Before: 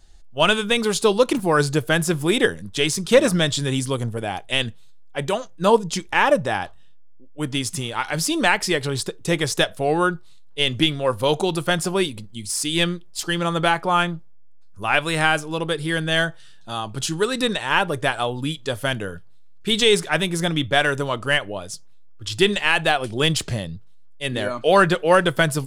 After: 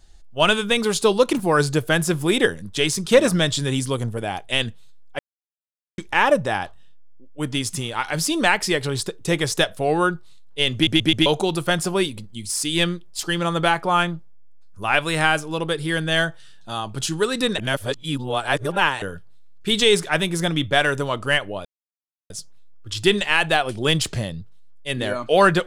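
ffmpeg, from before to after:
-filter_complex "[0:a]asplit=10[a][b][c][d][e][f][g][h][i][j];[a]atrim=end=5.19,asetpts=PTS-STARTPTS,afade=t=out:st=5.186:d=0.004:c=hsin[k];[b]atrim=start=5.19:end=5.98,asetpts=PTS-STARTPTS,volume=0[l];[c]atrim=start=5.98:end=10.872,asetpts=PTS-STARTPTS,afade=t=in:d=0.004:c=hsin[m];[d]atrim=start=10.738:end=10.872[n];[e]atrim=start=10.738:end=10.872[o];[f]atrim=start=10.738:end=10.872[p];[g]atrim=start=11.258:end=17.582[q];[h]atrim=start=17.578:end=19.022,asetpts=PTS-STARTPTS,areverse[r];[i]atrim=start=19.018:end=21.65,asetpts=PTS-STARTPTS,afade=t=out:st=2.628:d=0.004:c=hsin,apad=pad_dur=0.65[s];[j]atrim=start=21.65,asetpts=PTS-STARTPTS,afade=t=in:d=0.004:c=hsin[t];[k][l][m]concat=n=3:v=0:a=1[u];[u][n]acrossfade=d=0.004:c1=hsin:c2=hsin[v];[v][o]acrossfade=d=0.004:c1=hsin:c2=hsin[w];[w][p]acrossfade=d=0.004:c1=hsin:c2=hsin[x];[x][q]acrossfade=d=0.004:c1=hsin:c2=hsin[y];[y][r]acrossfade=d=0.004:c1=hsin:c2=hsin[z];[s][t]concat=n=2:v=0:a=1[aa];[z][aa]acrossfade=d=0.004:c1=hsin:c2=hsin"

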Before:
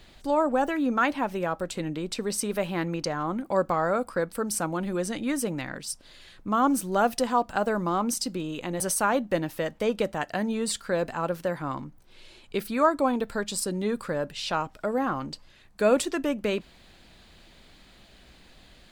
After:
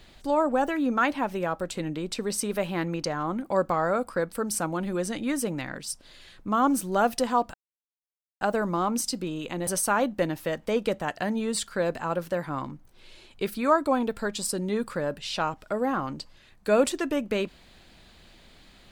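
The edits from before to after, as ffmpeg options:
-filter_complex "[0:a]asplit=2[a][b];[a]atrim=end=7.54,asetpts=PTS-STARTPTS,afade=t=out:st=7.536:d=0.004:c=hsin,apad=pad_dur=0.87[c];[b]atrim=start=7.54,asetpts=PTS-STARTPTS,afade=t=in:d=0.004:c=hsin[d];[c][d]concat=n=2:v=0:a=1"

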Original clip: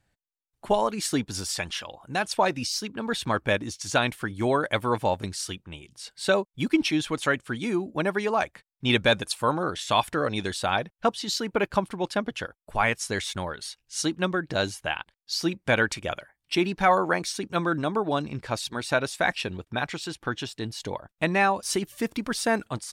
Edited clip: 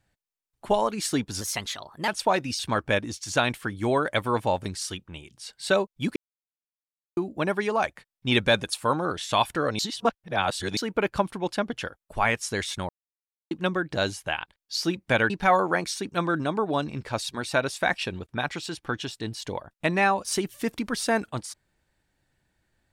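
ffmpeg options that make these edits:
-filter_complex "[0:a]asplit=11[a][b][c][d][e][f][g][h][i][j][k];[a]atrim=end=1.414[l];[b]atrim=start=1.41:end=2.2,asetpts=PTS-STARTPTS,asetrate=52038,aresample=44100[m];[c]atrim=start=2.196:end=2.712[n];[d]atrim=start=3.168:end=6.74,asetpts=PTS-STARTPTS,afade=t=out:st=3.568:d=0.004:c=hsin[o];[e]atrim=start=6.74:end=7.75,asetpts=PTS-STARTPTS,volume=0[p];[f]atrim=start=7.75:end=10.372,asetpts=PTS-STARTPTS,afade=t=in:d=0.004:c=hsin[q];[g]atrim=start=10.368:end=11.352,asetpts=PTS-STARTPTS,areverse[r];[h]atrim=start=11.348:end=13.47,asetpts=PTS-STARTPTS,afade=t=out:st=2.118:d=0.004:c=hsin[s];[i]atrim=start=13.47:end=14.09,asetpts=PTS-STARTPTS,volume=0[t];[j]atrim=start=14.09:end=15.882,asetpts=PTS-STARTPTS,afade=t=in:d=0.004:c=hsin[u];[k]atrim=start=16.678[v];[l][m]acrossfade=d=0.004:c1=hsin:c2=hsin[w];[w][n]acrossfade=d=0.004:c1=hsin:c2=hsin[x];[o][p][q]concat=n=3:v=0:a=1[y];[x][y]acrossfade=d=0.004:c1=hsin:c2=hsin[z];[z][r]acrossfade=d=0.004:c1=hsin:c2=hsin[aa];[s][t][u]concat=n=3:v=0:a=1[ab];[aa][ab]acrossfade=d=0.004:c1=hsin:c2=hsin[ac];[ac][v]acrossfade=d=0.004:c1=hsin:c2=hsin"

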